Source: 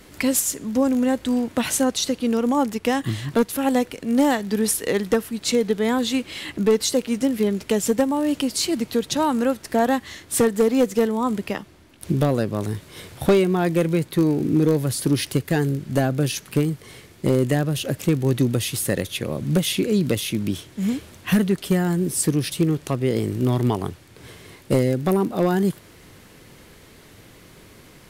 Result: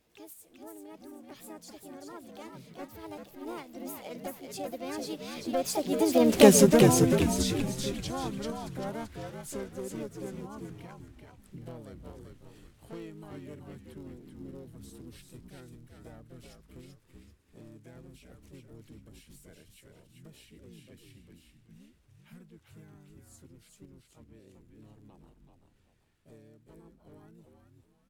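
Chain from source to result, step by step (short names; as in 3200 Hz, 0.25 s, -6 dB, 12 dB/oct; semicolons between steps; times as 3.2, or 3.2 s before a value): G.711 law mismatch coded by mu; Doppler pass-by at 6.43, 58 m/s, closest 7.9 m; on a send: frequency-shifting echo 0.386 s, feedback 38%, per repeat -64 Hz, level -4.5 dB; on the sum: harmoniser +5 st -4 dB; gain +4 dB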